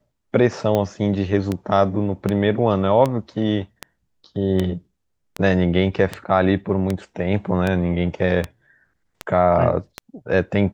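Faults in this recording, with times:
tick 78 rpm -9 dBFS

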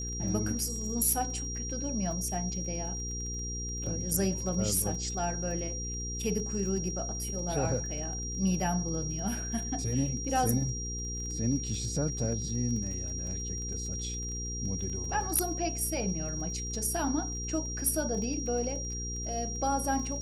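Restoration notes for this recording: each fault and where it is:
crackle 23 per s -39 dBFS
hum 60 Hz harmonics 8 -38 dBFS
whine 5.7 kHz -37 dBFS

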